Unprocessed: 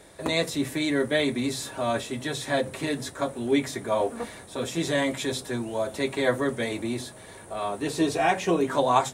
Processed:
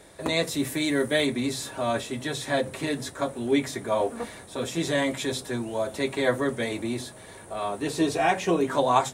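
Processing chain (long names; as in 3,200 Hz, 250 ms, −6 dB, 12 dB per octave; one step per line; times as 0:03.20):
0:00.49–0:01.25: high-shelf EQ 11,000 Hz → 6,900 Hz +9.5 dB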